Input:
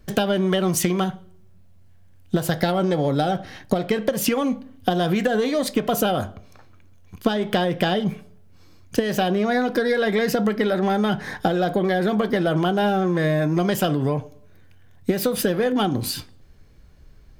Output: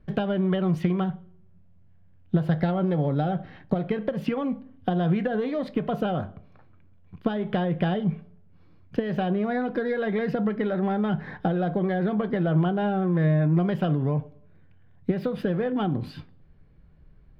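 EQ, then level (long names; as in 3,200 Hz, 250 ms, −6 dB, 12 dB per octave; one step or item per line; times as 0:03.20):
high-frequency loss of the air 400 metres
parametric band 160 Hz +8.5 dB 0.41 octaves
−5.0 dB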